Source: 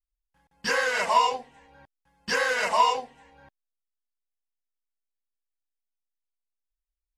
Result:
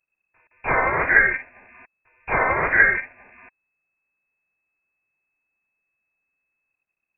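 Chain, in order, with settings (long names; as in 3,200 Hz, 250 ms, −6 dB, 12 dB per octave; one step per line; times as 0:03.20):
ceiling on every frequency bin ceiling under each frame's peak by 13 dB
voice inversion scrambler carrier 2,600 Hz
level +6 dB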